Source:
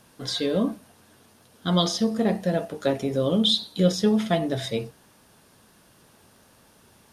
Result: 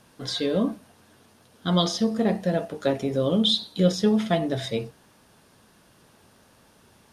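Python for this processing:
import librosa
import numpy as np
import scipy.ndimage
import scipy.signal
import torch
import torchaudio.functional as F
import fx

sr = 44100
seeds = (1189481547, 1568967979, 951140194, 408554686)

y = fx.high_shelf(x, sr, hz=9300.0, db=-6.5)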